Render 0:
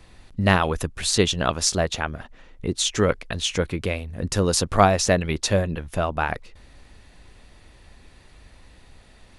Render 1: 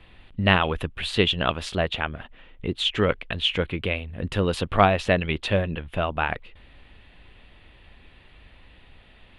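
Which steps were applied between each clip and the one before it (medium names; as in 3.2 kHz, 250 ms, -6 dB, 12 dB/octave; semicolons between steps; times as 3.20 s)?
resonant high shelf 4.3 kHz -12 dB, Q 3; trim -2 dB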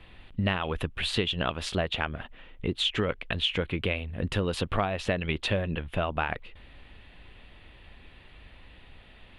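compression 12:1, threshold -23 dBFS, peak gain reduction 13 dB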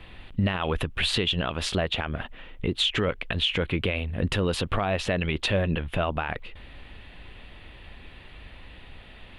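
peak limiter -20.5 dBFS, peak gain reduction 8.5 dB; trim +5.5 dB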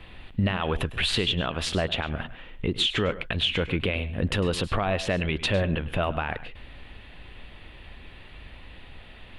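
reverberation, pre-delay 103 ms, DRR 14.5 dB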